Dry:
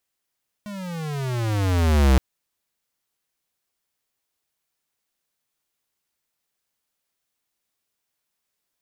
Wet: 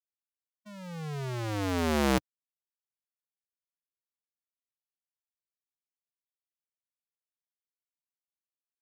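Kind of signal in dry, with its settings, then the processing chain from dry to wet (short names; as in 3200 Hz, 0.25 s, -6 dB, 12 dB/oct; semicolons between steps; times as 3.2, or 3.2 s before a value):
gliding synth tone square, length 1.52 s, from 211 Hz, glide -21 st, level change +20 dB, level -14 dB
per-bin expansion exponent 2; HPF 180 Hz 12 dB/oct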